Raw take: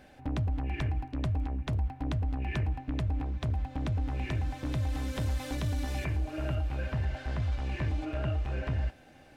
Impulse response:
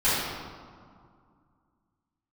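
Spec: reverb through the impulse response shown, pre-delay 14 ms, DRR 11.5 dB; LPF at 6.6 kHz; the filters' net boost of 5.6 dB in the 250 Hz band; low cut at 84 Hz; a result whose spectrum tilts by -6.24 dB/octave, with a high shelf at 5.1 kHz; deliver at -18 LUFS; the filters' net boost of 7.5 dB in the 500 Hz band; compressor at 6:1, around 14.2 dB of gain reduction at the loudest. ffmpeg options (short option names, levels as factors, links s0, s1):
-filter_complex "[0:a]highpass=84,lowpass=6600,equalizer=f=250:t=o:g=4.5,equalizer=f=500:t=o:g=8.5,highshelf=f=5100:g=8,acompressor=threshold=0.00794:ratio=6,asplit=2[s0][s1];[1:a]atrim=start_sample=2205,adelay=14[s2];[s1][s2]afir=irnorm=-1:irlink=0,volume=0.0422[s3];[s0][s3]amix=inputs=2:normalize=0,volume=22.4"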